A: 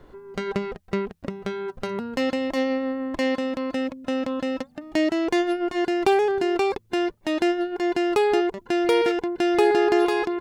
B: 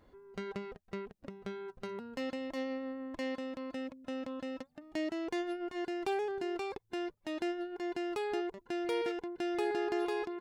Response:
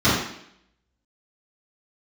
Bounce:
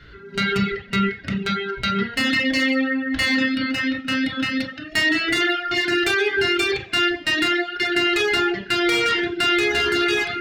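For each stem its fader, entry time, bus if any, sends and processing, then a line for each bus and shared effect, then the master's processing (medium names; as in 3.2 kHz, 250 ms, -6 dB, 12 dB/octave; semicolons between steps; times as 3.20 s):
+0.5 dB, 0.00 s, send -16.5 dB, FFT filter 120 Hz 0 dB, 250 Hz -12 dB, 980 Hz -16 dB, 1.5 kHz +10 dB, 2.8 kHz +13 dB, 4.6 kHz +11 dB, 8.5 kHz -8 dB; one-sided clip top -20 dBFS, bottom -15.5 dBFS
-11.5 dB, 0.00 s, send -3.5 dB, spectral blur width 192 ms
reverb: on, RT60 0.70 s, pre-delay 3 ms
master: reverb removal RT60 0.7 s; peak limiter -11 dBFS, peak gain reduction 6 dB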